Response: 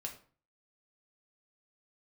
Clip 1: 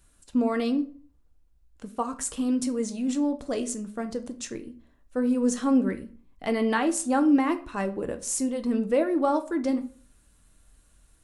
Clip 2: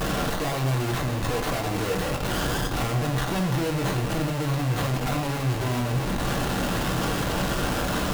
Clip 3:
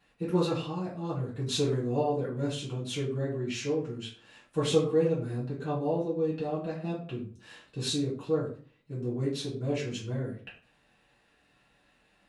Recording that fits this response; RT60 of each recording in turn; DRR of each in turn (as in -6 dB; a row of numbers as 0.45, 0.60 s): 2; 0.40, 0.40, 0.40 s; 7.0, 0.5, -8.5 dB